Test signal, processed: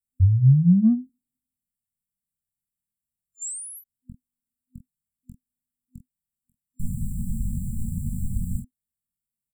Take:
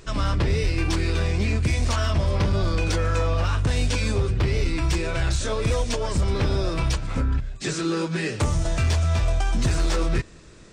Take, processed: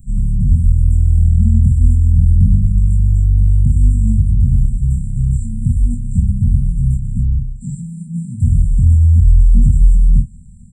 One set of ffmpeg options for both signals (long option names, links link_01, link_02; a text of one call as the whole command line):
ffmpeg -i in.wav -filter_complex "[0:a]afftfilt=real='re*(1-between(b*sr/4096,250,7200))':imag='im*(1-between(b*sr/4096,250,7200))':win_size=4096:overlap=0.75,acrossover=split=6400[link_01][link_02];[link_02]acompressor=threshold=-52dB:ratio=4:attack=1:release=60[link_03];[link_01][link_03]amix=inputs=2:normalize=0,lowshelf=frequency=410:gain=8,aecho=1:1:22|46:0.562|0.316,acrossover=split=370|4500[link_04][link_05][link_06];[link_05]asoftclip=type=tanh:threshold=-40dB[link_07];[link_04][link_07][link_06]amix=inputs=3:normalize=0,acrossover=split=330[link_08][link_09];[link_09]acompressor=threshold=-18dB:ratio=3[link_10];[link_08][link_10]amix=inputs=2:normalize=0,volume=1.5dB" out.wav